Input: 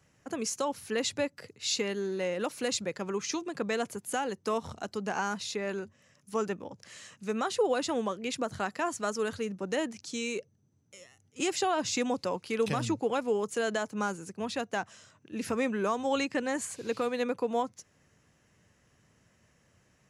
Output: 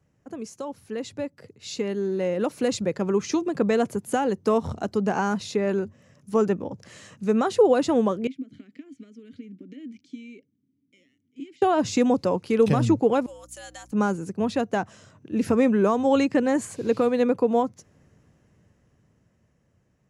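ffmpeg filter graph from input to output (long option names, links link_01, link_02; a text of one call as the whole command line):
ffmpeg -i in.wav -filter_complex "[0:a]asettb=1/sr,asplit=3[link_01][link_02][link_03];[link_01]atrim=end=8.274[link_04];[link_02]atrim=start=8.27:end=11.62,asetpts=PTS-STARTPTS,afade=type=in:duration=0.004:curve=qsin,afade=type=out:start_time=3.346:duration=0.004:curve=qsin,highshelf=frequency=4200:gain=7,acompressor=threshold=-35dB:ratio=16:attack=3.2:release=140:knee=1:detection=peak,asplit=3[link_05][link_06][link_07];[link_05]bandpass=frequency=270:width_type=q:width=8,volume=0dB[link_08];[link_06]bandpass=frequency=2290:width_type=q:width=8,volume=-6dB[link_09];[link_07]bandpass=frequency=3010:width_type=q:width=8,volume=-9dB[link_10];[link_08][link_09][link_10]amix=inputs=3:normalize=0[link_11];[link_03]atrim=start=11.616[link_12];[link_04][link_11]acrossfade=duration=0.004:curve1=hsin:curve2=qsin[link_13];[link_13][link_12]acrossfade=duration=0.004:curve1=qsin:curve2=hsin,asettb=1/sr,asplit=3[link_14][link_15][link_16];[link_14]atrim=end=13.264[link_17];[link_15]atrim=start=13.26:end=13.92,asetpts=PTS-STARTPTS,afade=type=in:duration=0.004:curve=qsin,afade=type=out:start_time=0.656:duration=0.004:curve=qsin,aderivative,afreqshift=99,aeval=exprs='val(0)+0.000501*(sin(2*PI*60*n/s)+sin(2*PI*2*60*n/s)/2+sin(2*PI*3*60*n/s)/3+sin(2*PI*4*60*n/s)/4+sin(2*PI*5*60*n/s)/5)':channel_layout=same[link_18];[link_16]atrim=start=13.916[link_19];[link_17][link_18]acrossfade=duration=0.004:curve1=hsin:curve2=qsin[link_20];[link_20][link_19]acrossfade=duration=0.004:curve1=qsin:curve2=hsin,tiltshelf=frequency=870:gain=6.5,dynaudnorm=framelen=250:gausssize=17:maxgain=12dB,volume=-5dB" out.wav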